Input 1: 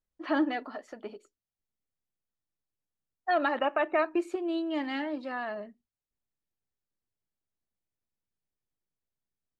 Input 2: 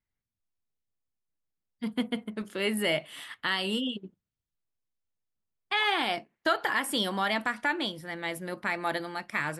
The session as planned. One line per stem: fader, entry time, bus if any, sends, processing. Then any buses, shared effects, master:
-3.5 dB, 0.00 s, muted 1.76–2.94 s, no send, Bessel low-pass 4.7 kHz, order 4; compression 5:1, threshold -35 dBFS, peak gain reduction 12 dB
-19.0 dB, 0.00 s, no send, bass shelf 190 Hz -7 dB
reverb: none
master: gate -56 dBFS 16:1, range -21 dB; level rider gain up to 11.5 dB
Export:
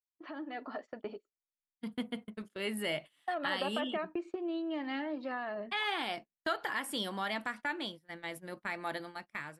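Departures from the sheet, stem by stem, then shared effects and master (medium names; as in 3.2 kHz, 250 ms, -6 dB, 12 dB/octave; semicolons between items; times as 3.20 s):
stem 1 -3.5 dB -> -10.5 dB; stem 2: missing bass shelf 190 Hz -7 dB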